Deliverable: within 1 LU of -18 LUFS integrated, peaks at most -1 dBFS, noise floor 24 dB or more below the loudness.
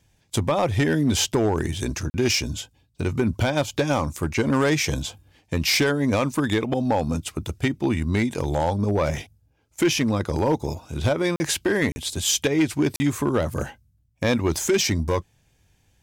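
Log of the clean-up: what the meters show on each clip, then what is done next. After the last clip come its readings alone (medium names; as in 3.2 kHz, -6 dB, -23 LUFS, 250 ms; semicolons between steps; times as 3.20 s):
clipped samples 1.1%; clipping level -14.0 dBFS; dropouts 4; longest dropout 40 ms; loudness -23.5 LUFS; peak level -14.0 dBFS; loudness target -18.0 LUFS
-> clip repair -14 dBFS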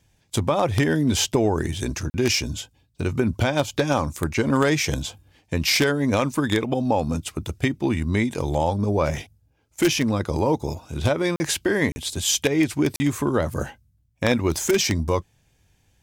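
clipped samples 0.0%; dropouts 4; longest dropout 40 ms
-> interpolate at 2.10/11.36/11.92/12.96 s, 40 ms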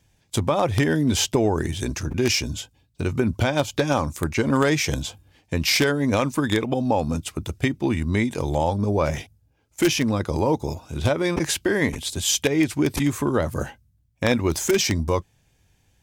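dropouts 0; loudness -23.0 LUFS; peak level -5.0 dBFS; loudness target -18.0 LUFS
-> trim +5 dB; peak limiter -1 dBFS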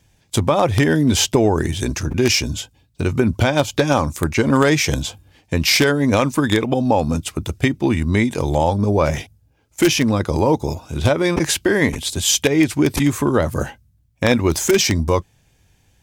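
loudness -18.0 LUFS; peak level -1.0 dBFS; noise floor -59 dBFS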